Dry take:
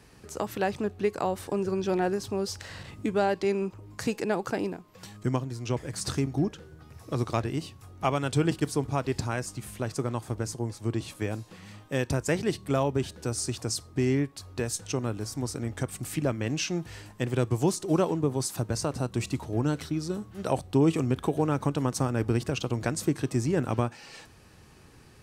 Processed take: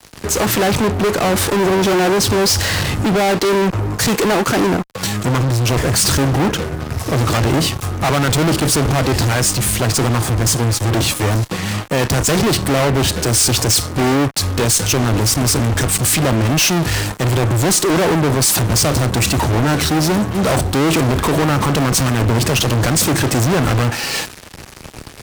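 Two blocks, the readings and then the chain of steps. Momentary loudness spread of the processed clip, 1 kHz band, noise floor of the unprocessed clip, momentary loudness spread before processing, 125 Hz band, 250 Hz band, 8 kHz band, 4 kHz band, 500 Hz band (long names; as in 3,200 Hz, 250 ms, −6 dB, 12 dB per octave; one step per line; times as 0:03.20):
5 LU, +14.5 dB, −54 dBFS, 8 LU, +14.5 dB, +11.5 dB, +20.5 dB, +20.5 dB, +11.5 dB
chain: fuzz pedal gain 48 dB, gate −51 dBFS
multiband upward and downward expander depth 40%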